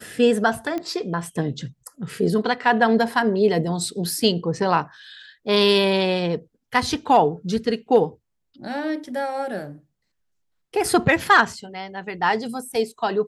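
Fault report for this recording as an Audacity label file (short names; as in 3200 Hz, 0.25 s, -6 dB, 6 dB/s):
0.780000	0.780000	pop -16 dBFS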